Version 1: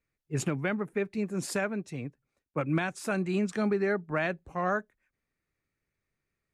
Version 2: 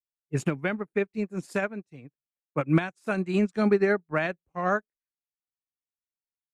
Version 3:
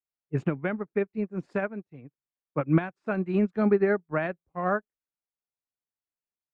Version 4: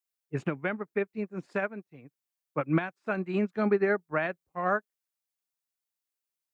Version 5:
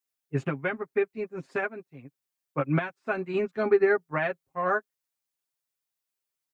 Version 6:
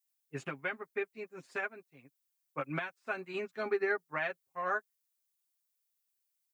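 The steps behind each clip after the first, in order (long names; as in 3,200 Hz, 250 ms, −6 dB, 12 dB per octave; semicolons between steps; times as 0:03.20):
expander for the loud parts 2.5 to 1, over −49 dBFS; level +8 dB
Bessel low-pass filter 1,600 Hz, order 2
spectral tilt +2 dB per octave
comb filter 7.5 ms, depth 80%
spectral tilt +3 dB per octave; level −7 dB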